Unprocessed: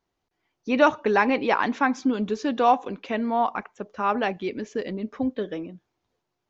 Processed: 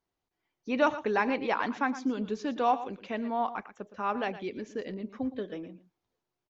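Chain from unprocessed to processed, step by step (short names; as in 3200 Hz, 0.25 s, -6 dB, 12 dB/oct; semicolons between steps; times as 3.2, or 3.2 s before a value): echo 0.115 s -14 dB; gain -7 dB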